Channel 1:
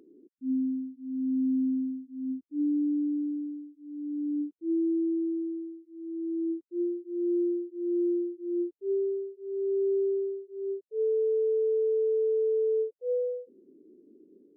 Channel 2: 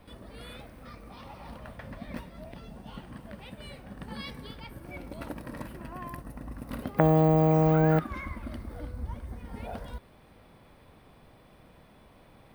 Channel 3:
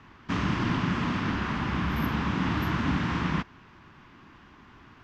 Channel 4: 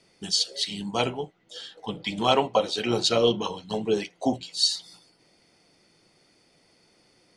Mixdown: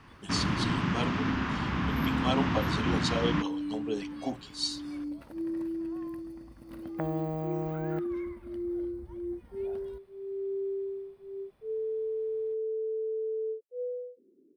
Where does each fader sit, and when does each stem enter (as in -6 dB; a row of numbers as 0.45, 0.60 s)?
-6.5, -12.0, -2.0, -9.5 dB; 0.70, 0.00, 0.00, 0.00 s